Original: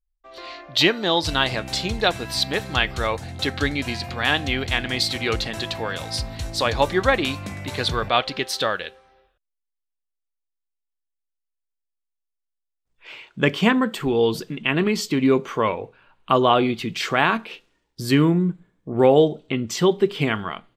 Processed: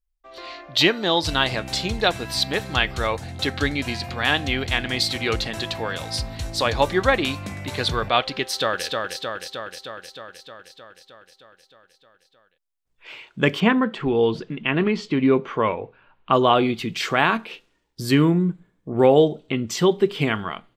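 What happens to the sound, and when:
8.42–8.85 s: echo throw 310 ms, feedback 70%, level -3.5 dB
13.60–16.33 s: low-pass 3.1 kHz

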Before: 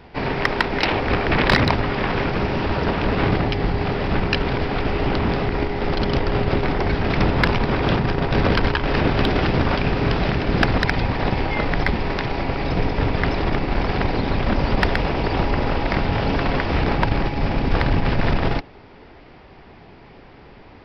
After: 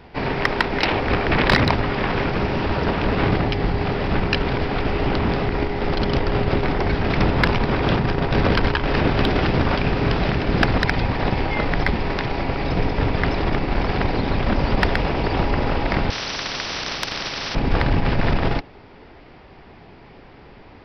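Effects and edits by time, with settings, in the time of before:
16.10–17.55 s: spectrum-flattening compressor 10:1

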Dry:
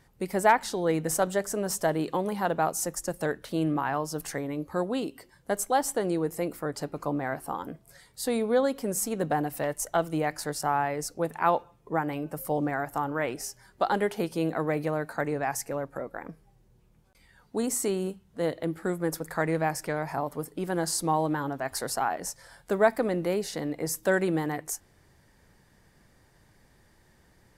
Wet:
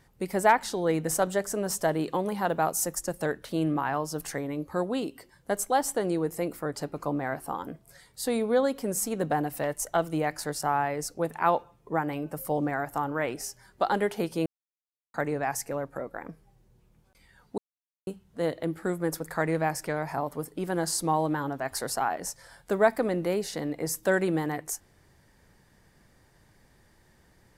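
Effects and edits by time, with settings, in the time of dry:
2.49–2.99 s: treble shelf 11 kHz +7.5 dB
14.46–15.14 s: mute
17.58–18.07 s: mute

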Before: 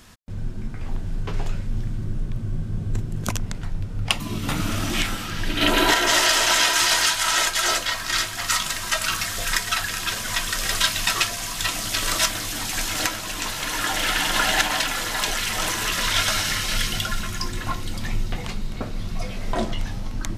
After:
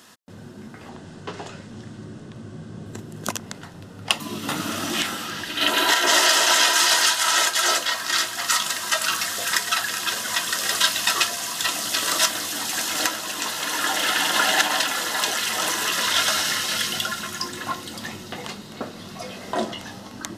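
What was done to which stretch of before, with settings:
0.89–2.86 s: low-pass 9.3 kHz 24 dB/octave
5.43–6.04 s: peaking EQ 300 Hz -7.5 dB 2.8 oct
whole clip: high-pass 240 Hz 12 dB/octave; band-stop 2.3 kHz, Q 7; trim +1.5 dB

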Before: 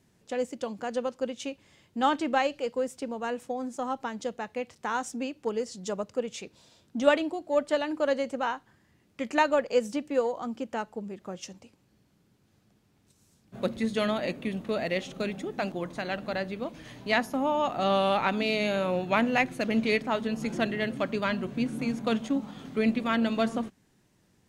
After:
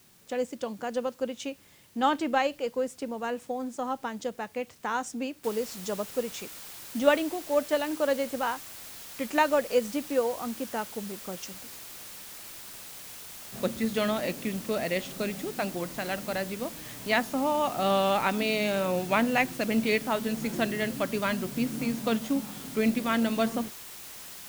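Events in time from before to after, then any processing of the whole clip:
5.44 s: noise floor step -60 dB -44 dB

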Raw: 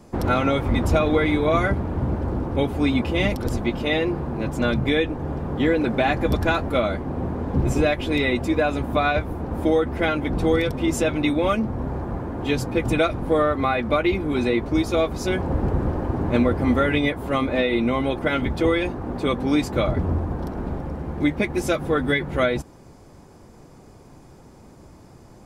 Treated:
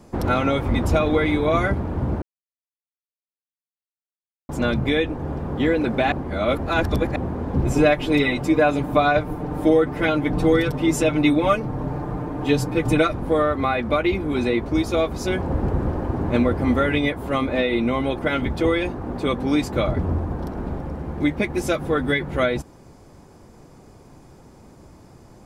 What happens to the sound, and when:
2.22–4.49 s: mute
6.12–7.16 s: reverse
7.73–13.13 s: comb 6.7 ms, depth 72%

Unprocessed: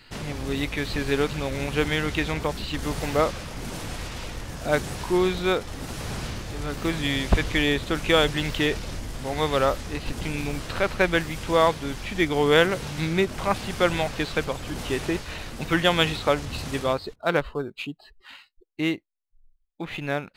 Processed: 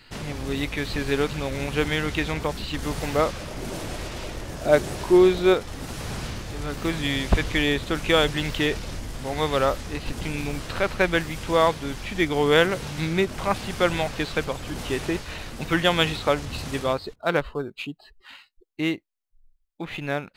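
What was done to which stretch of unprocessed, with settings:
3.40–5.54 s: small resonant body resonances 370/600 Hz, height 7 dB, ringing for 25 ms

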